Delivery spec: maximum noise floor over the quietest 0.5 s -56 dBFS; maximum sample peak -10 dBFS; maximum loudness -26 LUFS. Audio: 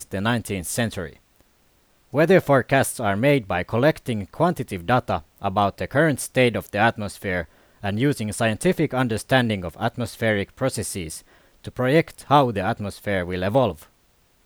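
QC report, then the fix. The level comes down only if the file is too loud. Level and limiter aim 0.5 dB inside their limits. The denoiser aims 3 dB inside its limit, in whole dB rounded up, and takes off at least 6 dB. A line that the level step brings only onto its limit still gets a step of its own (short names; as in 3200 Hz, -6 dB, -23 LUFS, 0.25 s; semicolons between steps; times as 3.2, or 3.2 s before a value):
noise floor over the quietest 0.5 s -61 dBFS: OK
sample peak -3.5 dBFS: fail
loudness -22.5 LUFS: fail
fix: gain -4 dB; limiter -10.5 dBFS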